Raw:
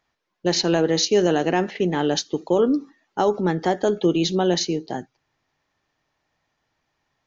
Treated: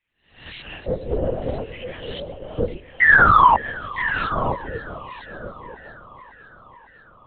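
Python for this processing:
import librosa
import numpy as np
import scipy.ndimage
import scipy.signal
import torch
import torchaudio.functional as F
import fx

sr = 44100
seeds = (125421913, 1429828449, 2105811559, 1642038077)

p1 = fx.spec_swells(x, sr, rise_s=0.51)
p2 = fx.filter_lfo_bandpass(p1, sr, shape='square', hz=0.58, low_hz=520.0, high_hz=2500.0, q=4.0)
p3 = fx.spec_paint(p2, sr, seeds[0], shape='fall', start_s=3.01, length_s=0.55, low_hz=890.0, high_hz=2000.0, level_db=-12.0)
p4 = np.clip(10.0 ** (20.5 / 20.0) * p3, -1.0, 1.0) / 10.0 ** (20.5 / 20.0)
p5 = p3 + (p4 * 10.0 ** (-8.5 / 20.0))
p6 = p5 + 10.0 ** (-10.5 / 20.0) * np.pad(p5, (int(960 * sr / 1000.0), 0))[:len(p5)]
p7 = fx.whisperise(p6, sr, seeds[1])
p8 = fx.lpc_vocoder(p7, sr, seeds[2], excitation='whisper', order=8)
p9 = fx.echo_warbled(p8, sr, ms=551, feedback_pct=68, rate_hz=2.8, cents=108, wet_db=-19.5)
y = p9 * 10.0 ** (-2.0 / 20.0)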